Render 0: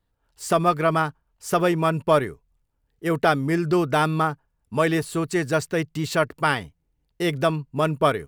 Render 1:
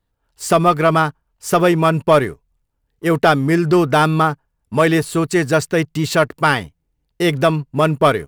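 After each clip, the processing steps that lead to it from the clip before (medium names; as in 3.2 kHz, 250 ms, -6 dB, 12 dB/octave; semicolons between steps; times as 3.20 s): waveshaping leveller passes 1; trim +3.5 dB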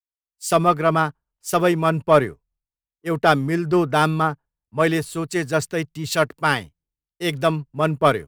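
three bands expanded up and down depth 100%; trim -4.5 dB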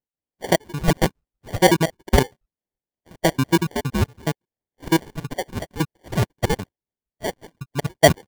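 random holes in the spectrogram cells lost 82%; sample-and-hold 34×; trim +6.5 dB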